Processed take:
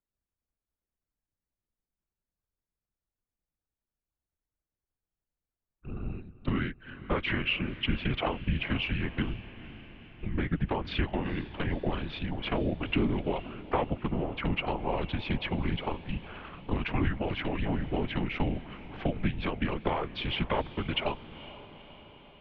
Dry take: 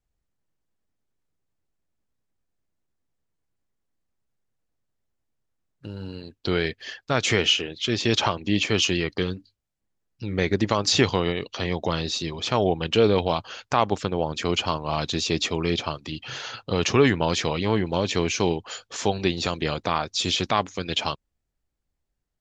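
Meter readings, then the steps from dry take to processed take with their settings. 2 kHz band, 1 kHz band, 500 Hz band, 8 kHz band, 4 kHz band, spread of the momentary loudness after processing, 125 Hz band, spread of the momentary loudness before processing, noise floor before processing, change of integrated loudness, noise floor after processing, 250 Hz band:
−6.0 dB, −8.5 dB, −10.5 dB, below −40 dB, −12.0 dB, 14 LU, −4.0 dB, 13 LU, −79 dBFS, −8.0 dB, below −85 dBFS, −5.5 dB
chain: adaptive Wiener filter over 9 samples
noise gate −35 dBFS, range −8 dB
low-shelf EQ 250 Hz +7 dB
downward compressor, threshold −23 dBFS, peak gain reduction 12 dB
random phases in short frames
feedback delay with all-pass diffusion 482 ms, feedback 59%, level −16 dB
single-sideband voice off tune −190 Hz 180–3,200 Hz

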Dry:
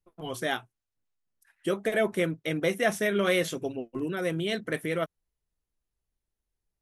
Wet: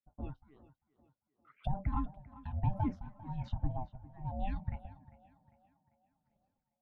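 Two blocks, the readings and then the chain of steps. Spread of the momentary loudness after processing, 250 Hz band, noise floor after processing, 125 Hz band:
13 LU, −11.0 dB, below −85 dBFS, +0.5 dB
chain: spectral envelope exaggerated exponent 1.5
camcorder AGC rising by 73 dB per second
high-pass filter 160 Hz 24 dB per octave
dynamic equaliser 560 Hz, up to +8 dB, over −39 dBFS, Q 1.1
in parallel at −10 dB: soft clipping −18.5 dBFS, distortion −13 dB
on the sum: ring modulation 390 Hz
rotating-speaker cabinet horn 6 Hz
all-pass phaser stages 6, 1.9 Hz, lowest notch 560–2,500 Hz
amplitude tremolo 1.1 Hz, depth 98%
head-to-tape spacing loss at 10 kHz 36 dB
tape delay 398 ms, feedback 52%, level −16 dB, low-pass 3,600 Hz
level −5 dB

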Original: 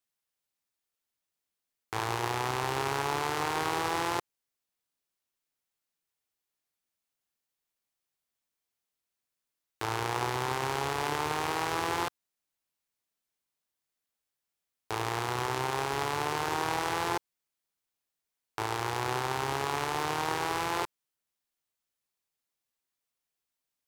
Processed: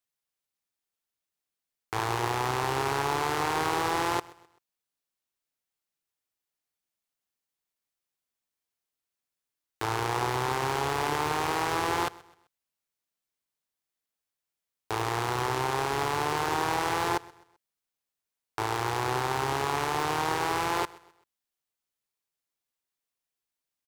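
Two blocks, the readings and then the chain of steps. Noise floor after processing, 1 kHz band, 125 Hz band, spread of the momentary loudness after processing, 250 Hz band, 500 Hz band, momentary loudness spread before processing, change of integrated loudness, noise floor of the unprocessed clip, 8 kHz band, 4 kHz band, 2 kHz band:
below −85 dBFS, +3.0 dB, +3.0 dB, 5 LU, +3.0 dB, +3.0 dB, 5 LU, +2.5 dB, below −85 dBFS, +2.0 dB, +1.5 dB, +2.0 dB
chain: leveller curve on the samples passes 1
repeating echo 129 ms, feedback 38%, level −22 dB

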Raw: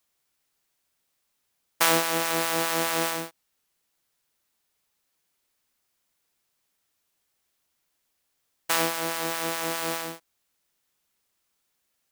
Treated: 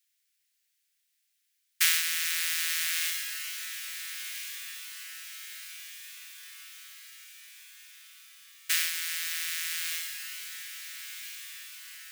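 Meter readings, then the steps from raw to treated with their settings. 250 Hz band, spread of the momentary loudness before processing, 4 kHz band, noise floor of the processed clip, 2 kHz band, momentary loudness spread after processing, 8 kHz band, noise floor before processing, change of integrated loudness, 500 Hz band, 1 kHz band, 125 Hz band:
below −40 dB, 11 LU, +0.5 dB, −76 dBFS, −1.5 dB, 21 LU, +0.5 dB, −76 dBFS, −5.0 dB, below −40 dB, −20.0 dB, below −40 dB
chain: Butterworth high-pass 1,700 Hz 36 dB per octave
on a send: feedback delay with all-pass diffusion 1,457 ms, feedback 55%, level −9 dB

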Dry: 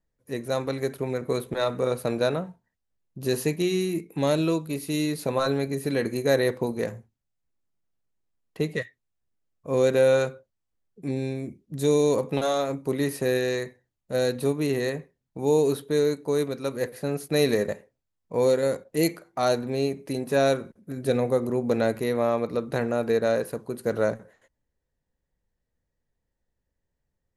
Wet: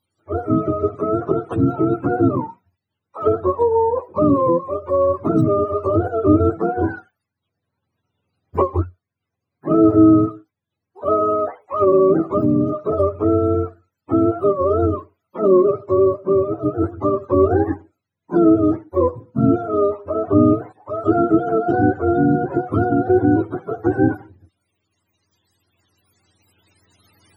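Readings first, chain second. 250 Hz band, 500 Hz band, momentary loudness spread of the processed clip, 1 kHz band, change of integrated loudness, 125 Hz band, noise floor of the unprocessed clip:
+11.5 dB, +6.0 dB, 9 LU, +11.5 dB, +8.0 dB, +8.0 dB, −81 dBFS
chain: frequency axis turned over on the octave scale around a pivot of 410 Hz
camcorder AGC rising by 6.7 dB per second
level +8.5 dB

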